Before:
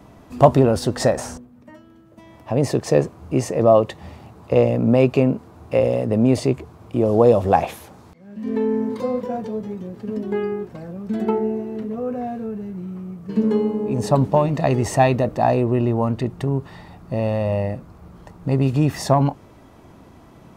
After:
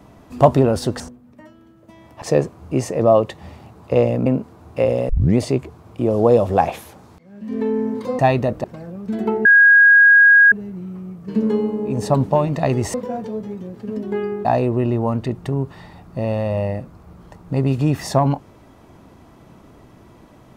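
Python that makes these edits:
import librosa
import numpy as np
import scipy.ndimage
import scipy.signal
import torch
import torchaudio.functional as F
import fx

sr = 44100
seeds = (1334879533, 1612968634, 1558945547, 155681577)

y = fx.edit(x, sr, fx.cut(start_s=1.0, length_s=0.29),
    fx.cut(start_s=2.51, length_s=0.31),
    fx.cut(start_s=4.86, length_s=0.35),
    fx.tape_start(start_s=6.04, length_s=0.29),
    fx.swap(start_s=9.14, length_s=1.51, other_s=14.95, other_length_s=0.45),
    fx.bleep(start_s=11.46, length_s=1.07, hz=1640.0, db=-6.5), tone=tone)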